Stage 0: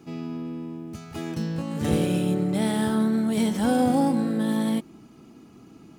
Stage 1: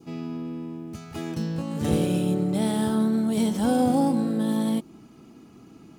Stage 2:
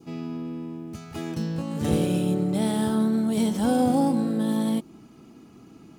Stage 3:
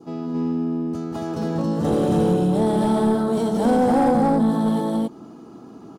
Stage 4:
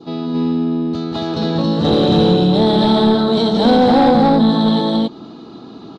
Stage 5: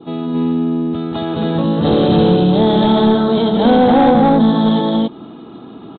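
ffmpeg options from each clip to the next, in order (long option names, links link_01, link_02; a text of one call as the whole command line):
ffmpeg -i in.wav -af "adynamicequalizer=threshold=0.00355:dfrequency=1900:dqfactor=1.5:tfrequency=1900:tqfactor=1.5:attack=5:release=100:ratio=0.375:range=3:mode=cutabove:tftype=bell" out.wav
ffmpeg -i in.wav -af anull out.wav
ffmpeg -i in.wav -filter_complex "[0:a]equalizer=frequency=2300:width_type=o:width=0.94:gain=-14,aecho=1:1:189.5|274.1:0.447|0.891,asplit=2[link_01][link_02];[link_02]highpass=frequency=720:poles=1,volume=19dB,asoftclip=type=tanh:threshold=-8dB[link_03];[link_01][link_03]amix=inputs=2:normalize=0,lowpass=frequency=1200:poles=1,volume=-6dB" out.wav
ffmpeg -i in.wav -af "lowpass=frequency=3900:width_type=q:width=9.3,volume=6dB" out.wav
ffmpeg -i in.wav -af "aresample=8000,aresample=44100,volume=1dB" out.wav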